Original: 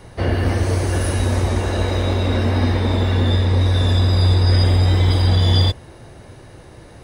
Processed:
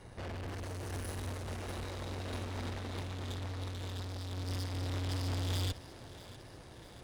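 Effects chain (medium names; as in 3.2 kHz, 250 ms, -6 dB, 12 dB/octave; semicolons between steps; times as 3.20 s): valve stage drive 31 dB, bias 0.5; thinning echo 645 ms, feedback 63%, high-pass 330 Hz, level -9 dB; gate -30 dBFS, range -19 dB; trim +10 dB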